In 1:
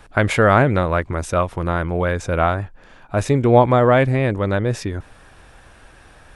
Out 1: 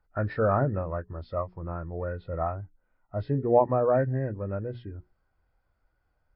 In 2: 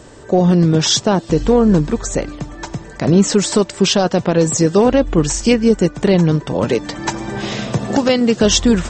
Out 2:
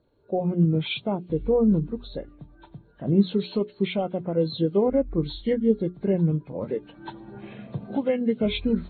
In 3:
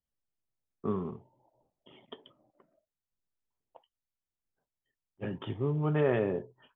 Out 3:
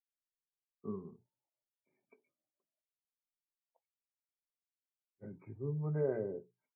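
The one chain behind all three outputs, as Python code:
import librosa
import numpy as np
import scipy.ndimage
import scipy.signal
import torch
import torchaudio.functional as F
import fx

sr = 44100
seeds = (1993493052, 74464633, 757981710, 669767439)

y = fx.freq_compress(x, sr, knee_hz=1200.0, ratio=1.5)
y = fx.hum_notches(y, sr, base_hz=60, count=7)
y = fx.spectral_expand(y, sr, expansion=1.5)
y = F.gain(torch.from_numpy(y), -7.5).numpy()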